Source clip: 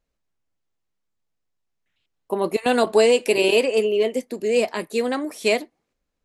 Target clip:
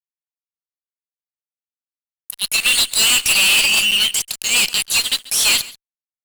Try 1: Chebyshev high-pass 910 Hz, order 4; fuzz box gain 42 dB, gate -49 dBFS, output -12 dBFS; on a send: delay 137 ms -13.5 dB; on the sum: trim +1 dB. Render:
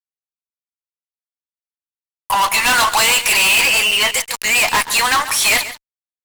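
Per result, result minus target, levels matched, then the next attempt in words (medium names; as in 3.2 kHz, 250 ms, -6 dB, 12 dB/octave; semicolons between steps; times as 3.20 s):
1 kHz band +15.0 dB; echo-to-direct +6 dB
Chebyshev high-pass 2.8 kHz, order 4; fuzz box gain 42 dB, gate -49 dBFS, output -12 dBFS; on a send: delay 137 ms -13.5 dB; on the sum: trim +1 dB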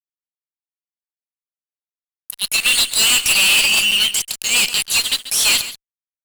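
echo-to-direct +6 dB
Chebyshev high-pass 2.8 kHz, order 4; fuzz box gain 42 dB, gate -49 dBFS, output -12 dBFS; on a send: delay 137 ms -19.5 dB; on the sum: trim +1 dB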